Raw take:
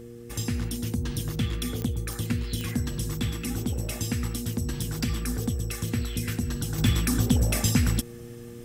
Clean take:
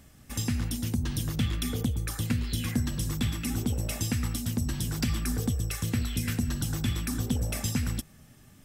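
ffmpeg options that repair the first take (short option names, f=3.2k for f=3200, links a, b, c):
-af "adeclick=t=4,bandreject=f=118.4:t=h:w=4,bandreject=f=236.8:t=h:w=4,bandreject=f=355.2:t=h:w=4,bandreject=f=473.6:t=h:w=4,asetnsamples=n=441:p=0,asendcmd='6.78 volume volume -6.5dB',volume=0dB"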